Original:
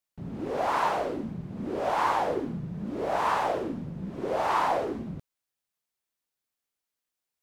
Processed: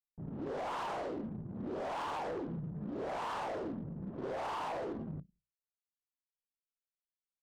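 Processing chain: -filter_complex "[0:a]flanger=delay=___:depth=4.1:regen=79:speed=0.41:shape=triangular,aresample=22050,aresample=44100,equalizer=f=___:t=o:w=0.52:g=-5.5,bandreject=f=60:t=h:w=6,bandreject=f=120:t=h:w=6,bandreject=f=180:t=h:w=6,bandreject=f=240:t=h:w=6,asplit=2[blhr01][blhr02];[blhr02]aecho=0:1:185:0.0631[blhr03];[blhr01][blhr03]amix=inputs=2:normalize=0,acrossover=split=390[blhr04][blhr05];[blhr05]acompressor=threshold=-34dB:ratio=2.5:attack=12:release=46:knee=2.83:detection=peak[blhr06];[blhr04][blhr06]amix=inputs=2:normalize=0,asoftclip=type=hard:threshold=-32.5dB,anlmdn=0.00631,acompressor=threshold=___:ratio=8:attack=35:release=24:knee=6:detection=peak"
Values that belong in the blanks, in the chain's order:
5.7, 2300, -39dB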